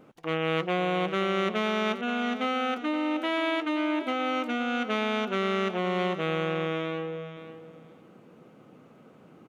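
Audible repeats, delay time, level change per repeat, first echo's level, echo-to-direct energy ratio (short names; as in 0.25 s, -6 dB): 2, 0.525 s, -15.5 dB, -12.0 dB, -12.0 dB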